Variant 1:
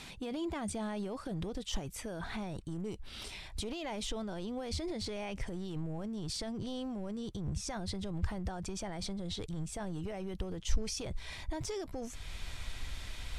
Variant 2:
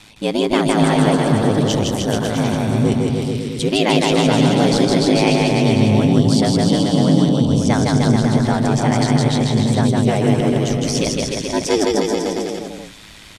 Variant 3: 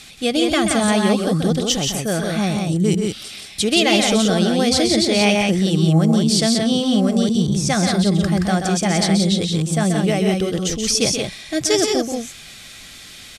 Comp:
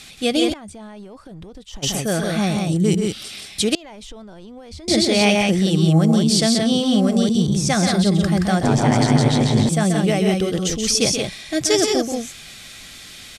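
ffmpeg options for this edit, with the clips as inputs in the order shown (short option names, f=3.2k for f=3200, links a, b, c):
-filter_complex "[0:a]asplit=2[a][b];[2:a]asplit=4[c][d][e][f];[c]atrim=end=0.54[g];[a]atrim=start=0.52:end=1.84[h];[d]atrim=start=1.82:end=3.752[i];[b]atrim=start=3.748:end=4.882[j];[e]atrim=start=4.878:end=8.632[k];[1:a]atrim=start=8.628:end=9.692[l];[f]atrim=start=9.688[m];[g][h]acrossfade=d=0.02:c1=tri:c2=tri[n];[n][i]acrossfade=d=0.02:c1=tri:c2=tri[o];[o][j]acrossfade=d=0.004:c1=hsin:c2=hsin[p];[p][k]acrossfade=d=0.004:c1=hsin:c2=hsin[q];[q][l]acrossfade=d=0.004:c1=hsin:c2=hsin[r];[r][m]acrossfade=d=0.004:c1=hsin:c2=hsin"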